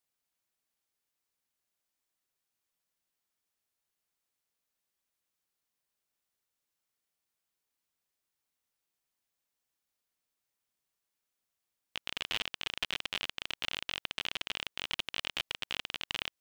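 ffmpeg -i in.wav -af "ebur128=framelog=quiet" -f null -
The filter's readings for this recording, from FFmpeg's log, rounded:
Integrated loudness:
  I:         -36.3 LUFS
  Threshold: -46.3 LUFS
Loudness range:
  LRA:         7.7 LU
  Threshold: -57.7 LUFS
  LRA low:   -43.6 LUFS
  LRA high:  -35.9 LUFS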